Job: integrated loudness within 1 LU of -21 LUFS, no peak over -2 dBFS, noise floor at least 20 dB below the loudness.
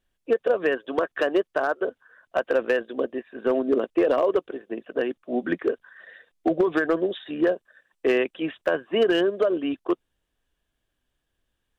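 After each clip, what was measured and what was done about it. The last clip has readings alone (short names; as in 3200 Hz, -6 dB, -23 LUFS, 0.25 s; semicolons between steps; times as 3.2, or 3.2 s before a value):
clipped 0.3%; flat tops at -13.5 dBFS; dropouts 1; longest dropout 3.2 ms; loudness -25.0 LUFS; peak -13.5 dBFS; loudness target -21.0 LUFS
-> clip repair -13.5 dBFS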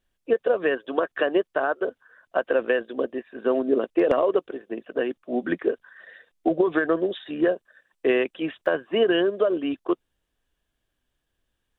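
clipped 0.0%; dropouts 1; longest dropout 3.2 ms
-> interpolate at 8.66, 3.2 ms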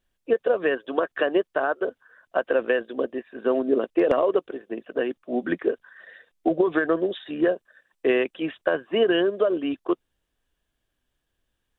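dropouts 0; loudness -25.0 LUFS; peak -4.5 dBFS; loudness target -21.0 LUFS
-> gain +4 dB; limiter -2 dBFS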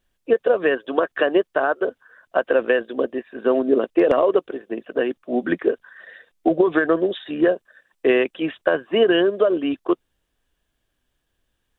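loudness -21.0 LUFS; peak -2.0 dBFS; noise floor -74 dBFS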